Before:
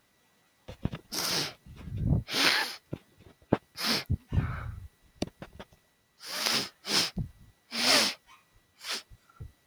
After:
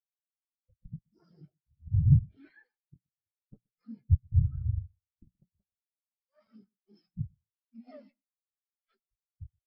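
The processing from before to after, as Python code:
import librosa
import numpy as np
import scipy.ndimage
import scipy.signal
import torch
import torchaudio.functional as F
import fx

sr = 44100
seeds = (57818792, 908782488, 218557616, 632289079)

p1 = fx.lowpass(x, sr, hz=2500.0, slope=6)
p2 = fx.leveller(p1, sr, passes=1)
p3 = fx.over_compress(p2, sr, threshold_db=-33.0, ratio=-0.5)
p4 = p2 + (p3 * librosa.db_to_amplitude(-0.5))
p5 = fx.low_shelf(p4, sr, hz=360.0, db=4.0)
p6 = fx.clip_asym(p5, sr, top_db=-35.5, bottom_db=-14.0)
p7 = fx.hum_notches(p6, sr, base_hz=60, count=5)
p8 = p7 + fx.echo_feedback(p7, sr, ms=125, feedback_pct=38, wet_db=-9.0, dry=0)
p9 = fx.spectral_expand(p8, sr, expansion=4.0)
y = p9 * librosa.db_to_amplitude(3.0)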